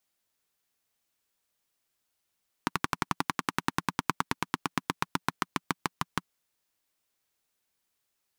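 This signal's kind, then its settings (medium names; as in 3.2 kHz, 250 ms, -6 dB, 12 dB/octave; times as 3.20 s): single-cylinder engine model, changing speed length 3.62 s, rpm 1400, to 700, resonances 180/260/1000 Hz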